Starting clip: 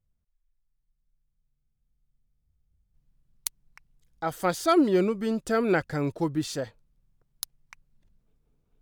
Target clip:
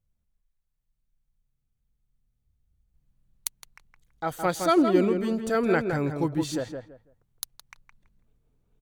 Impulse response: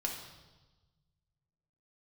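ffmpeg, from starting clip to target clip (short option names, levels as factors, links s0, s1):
-filter_complex "[0:a]bandreject=f=5100:w=11,asplit=2[s0][s1];[s1]adelay=165,lowpass=f=1900:p=1,volume=0.531,asplit=2[s2][s3];[s3]adelay=165,lowpass=f=1900:p=1,volume=0.24,asplit=2[s4][s5];[s5]adelay=165,lowpass=f=1900:p=1,volume=0.24[s6];[s0][s2][s4][s6]amix=inputs=4:normalize=0"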